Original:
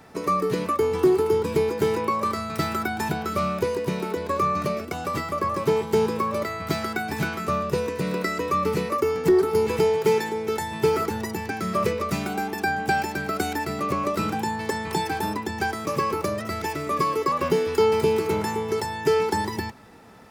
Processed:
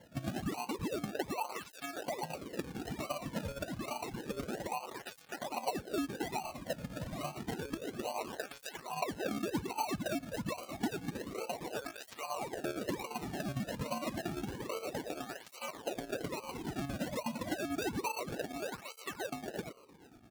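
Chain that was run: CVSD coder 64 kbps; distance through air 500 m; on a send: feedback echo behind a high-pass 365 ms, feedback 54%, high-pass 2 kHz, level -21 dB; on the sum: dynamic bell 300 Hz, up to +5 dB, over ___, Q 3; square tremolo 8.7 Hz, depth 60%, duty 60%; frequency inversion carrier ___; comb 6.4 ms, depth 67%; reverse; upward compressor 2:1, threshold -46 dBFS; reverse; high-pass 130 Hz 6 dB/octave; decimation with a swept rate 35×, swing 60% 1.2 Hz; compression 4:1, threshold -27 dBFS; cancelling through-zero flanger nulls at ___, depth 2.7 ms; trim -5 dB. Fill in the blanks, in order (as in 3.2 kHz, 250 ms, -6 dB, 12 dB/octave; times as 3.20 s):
-38 dBFS, 3.1 kHz, 0.29 Hz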